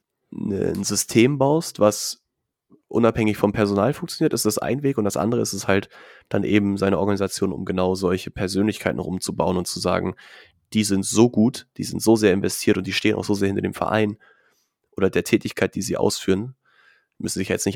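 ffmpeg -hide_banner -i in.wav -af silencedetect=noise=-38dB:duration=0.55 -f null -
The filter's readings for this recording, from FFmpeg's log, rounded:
silence_start: 2.14
silence_end: 2.91 | silence_duration: 0.77
silence_start: 14.14
silence_end: 14.98 | silence_duration: 0.84
silence_start: 16.51
silence_end: 17.20 | silence_duration: 0.69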